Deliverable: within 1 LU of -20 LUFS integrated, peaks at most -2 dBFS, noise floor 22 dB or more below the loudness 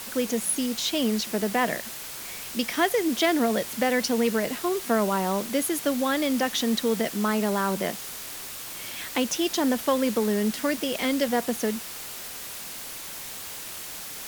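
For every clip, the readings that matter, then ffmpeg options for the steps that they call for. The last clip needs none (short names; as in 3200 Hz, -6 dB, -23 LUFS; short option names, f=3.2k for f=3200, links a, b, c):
noise floor -38 dBFS; noise floor target -49 dBFS; loudness -26.5 LUFS; peak -9.0 dBFS; loudness target -20.0 LUFS
-> -af "afftdn=nr=11:nf=-38"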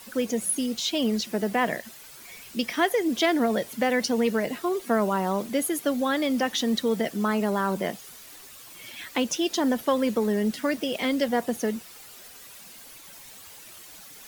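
noise floor -47 dBFS; noise floor target -48 dBFS
-> -af "afftdn=nr=6:nf=-47"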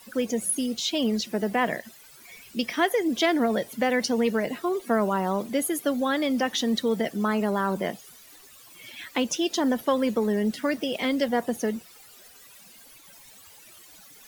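noise floor -51 dBFS; loudness -26.0 LUFS; peak -9.5 dBFS; loudness target -20.0 LUFS
-> -af "volume=6dB"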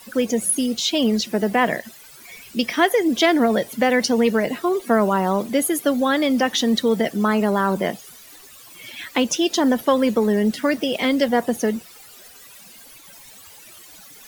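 loudness -20.0 LUFS; peak -3.5 dBFS; noise floor -45 dBFS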